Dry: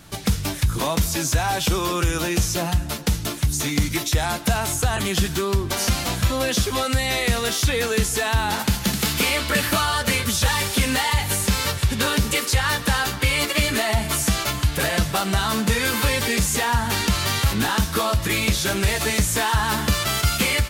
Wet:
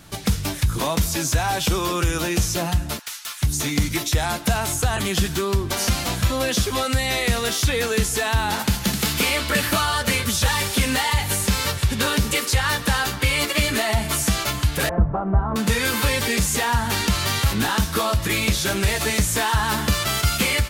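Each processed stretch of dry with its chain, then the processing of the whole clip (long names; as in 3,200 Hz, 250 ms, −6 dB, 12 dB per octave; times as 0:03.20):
0:02.99–0:03.42: high-pass filter 1,100 Hz 24 dB per octave + hard clipping −26.5 dBFS
0:14.89–0:15.56: low-pass filter 1,100 Hz 24 dB per octave + low-shelf EQ 67 Hz +11.5 dB
whole clip: no processing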